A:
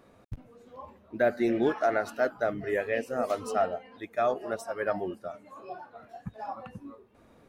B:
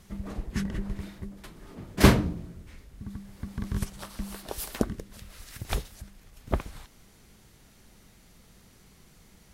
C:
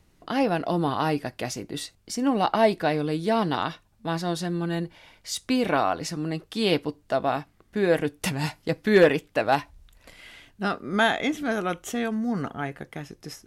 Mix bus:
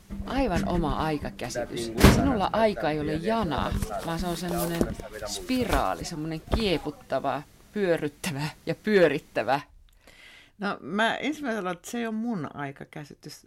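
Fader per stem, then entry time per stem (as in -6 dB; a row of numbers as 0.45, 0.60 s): -7.5, +1.0, -3.0 dB; 0.35, 0.00, 0.00 s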